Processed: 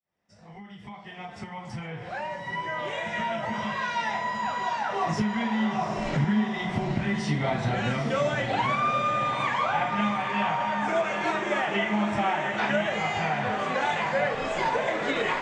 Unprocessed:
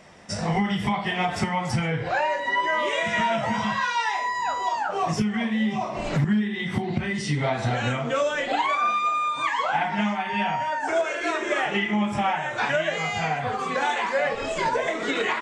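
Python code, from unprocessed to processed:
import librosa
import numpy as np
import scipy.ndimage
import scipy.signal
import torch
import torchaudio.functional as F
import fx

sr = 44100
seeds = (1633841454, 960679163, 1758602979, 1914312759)

y = fx.fade_in_head(x, sr, length_s=5.07)
y = fx.air_absorb(y, sr, metres=52.0)
y = fx.echo_diffused(y, sr, ms=833, feedback_pct=55, wet_db=-6.0)
y = y * librosa.db_to_amplitude(-2.5)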